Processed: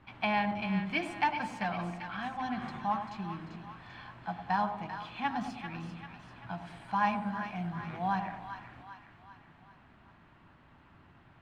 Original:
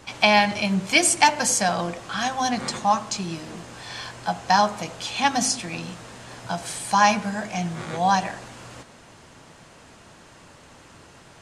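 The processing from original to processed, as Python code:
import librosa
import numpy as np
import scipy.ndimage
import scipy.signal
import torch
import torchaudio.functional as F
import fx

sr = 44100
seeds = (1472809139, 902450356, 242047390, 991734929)

y = fx.peak_eq(x, sr, hz=490.0, db=-12.0, octaves=0.68)
y = fx.quant_float(y, sr, bits=2)
y = fx.air_absorb(y, sr, metres=500.0)
y = fx.echo_split(y, sr, split_hz=960.0, low_ms=102, high_ms=392, feedback_pct=52, wet_db=-8.0)
y = y * 10.0 ** (-7.5 / 20.0)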